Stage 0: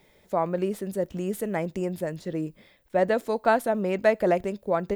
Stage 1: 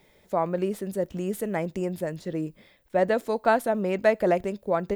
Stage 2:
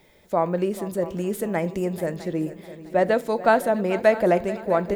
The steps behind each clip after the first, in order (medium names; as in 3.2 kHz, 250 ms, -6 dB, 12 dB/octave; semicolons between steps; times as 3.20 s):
no audible change
multi-head delay 218 ms, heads second and third, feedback 42%, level -16.5 dB; on a send at -14 dB: reverberation RT60 0.50 s, pre-delay 3 ms; on the sum: trim +3 dB